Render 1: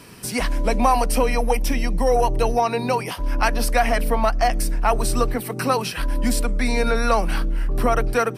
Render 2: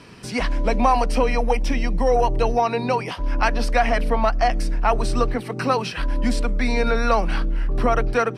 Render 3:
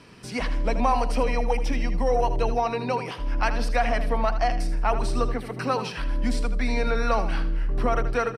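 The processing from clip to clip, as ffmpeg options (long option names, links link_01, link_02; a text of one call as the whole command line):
ffmpeg -i in.wav -af "lowpass=5100" out.wav
ffmpeg -i in.wav -af "aecho=1:1:79|158|237:0.282|0.0902|0.0289,volume=-5dB" out.wav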